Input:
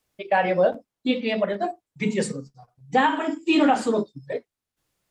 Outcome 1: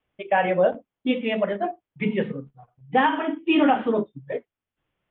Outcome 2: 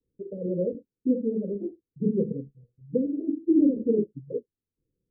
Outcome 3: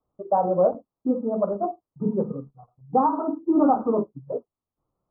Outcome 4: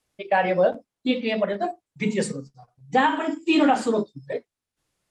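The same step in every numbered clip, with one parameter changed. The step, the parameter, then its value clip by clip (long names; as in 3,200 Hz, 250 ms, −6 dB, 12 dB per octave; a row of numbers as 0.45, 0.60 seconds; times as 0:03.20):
Butterworth low-pass, frequency: 3,400, 510, 1,300, 12,000 Hertz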